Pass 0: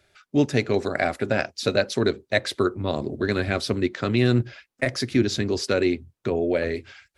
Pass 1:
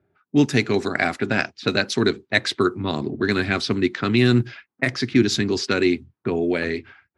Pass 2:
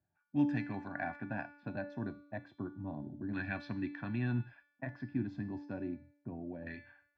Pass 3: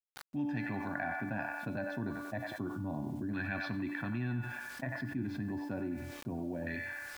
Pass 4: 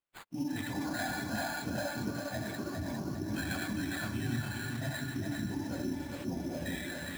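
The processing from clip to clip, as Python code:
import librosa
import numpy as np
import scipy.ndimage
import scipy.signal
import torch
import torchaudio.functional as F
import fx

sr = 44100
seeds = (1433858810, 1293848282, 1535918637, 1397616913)

y1 = scipy.signal.sosfilt(scipy.signal.butter(2, 130.0, 'highpass', fs=sr, output='sos'), x)
y1 = fx.env_lowpass(y1, sr, base_hz=590.0, full_db=-19.0)
y1 = fx.peak_eq(y1, sr, hz=560.0, db=-12.0, octaves=0.64)
y1 = y1 * 10.0 ** (5.5 / 20.0)
y2 = y1 + 0.83 * np.pad(y1, (int(1.2 * sr / 1000.0), 0))[:len(y1)]
y2 = fx.filter_lfo_lowpass(y2, sr, shape='saw_down', hz=0.3, low_hz=500.0, high_hz=2100.0, q=0.86)
y2 = fx.comb_fb(y2, sr, f0_hz=290.0, decay_s=0.73, harmonics='all', damping=0.0, mix_pct=80)
y2 = y2 * 10.0 ** (-5.5 / 20.0)
y3 = fx.echo_wet_bandpass(y2, sr, ms=93, feedback_pct=34, hz=1300.0, wet_db=-7.0)
y3 = fx.quant_dither(y3, sr, seeds[0], bits=12, dither='none')
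y3 = fx.env_flatten(y3, sr, amount_pct=70)
y3 = y3 * 10.0 ** (-7.0 / 20.0)
y4 = fx.phase_scramble(y3, sr, seeds[1], window_ms=50)
y4 = fx.sample_hold(y4, sr, seeds[2], rate_hz=5700.0, jitter_pct=0)
y4 = fx.echo_feedback(y4, sr, ms=405, feedback_pct=42, wet_db=-4.5)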